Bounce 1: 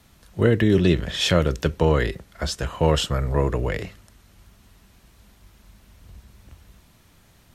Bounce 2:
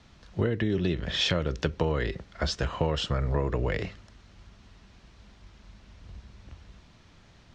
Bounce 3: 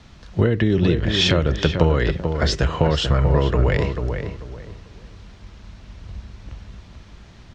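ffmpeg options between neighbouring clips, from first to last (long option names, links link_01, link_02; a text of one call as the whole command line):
ffmpeg -i in.wav -af "lowpass=frequency=5900:width=0.5412,lowpass=frequency=5900:width=1.3066,acompressor=threshold=-23dB:ratio=6" out.wav
ffmpeg -i in.wav -filter_complex "[0:a]lowshelf=frequency=160:gain=3.5,asplit=2[link_01][link_02];[link_02]adelay=440,lowpass=frequency=1900:poles=1,volume=-6dB,asplit=2[link_03][link_04];[link_04]adelay=440,lowpass=frequency=1900:poles=1,volume=0.28,asplit=2[link_05][link_06];[link_06]adelay=440,lowpass=frequency=1900:poles=1,volume=0.28,asplit=2[link_07][link_08];[link_08]adelay=440,lowpass=frequency=1900:poles=1,volume=0.28[link_09];[link_01][link_03][link_05][link_07][link_09]amix=inputs=5:normalize=0,volume=7.5dB" out.wav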